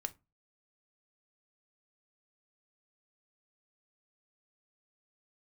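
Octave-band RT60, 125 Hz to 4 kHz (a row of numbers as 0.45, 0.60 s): 0.40, 0.35, 0.25, 0.25, 0.20, 0.15 s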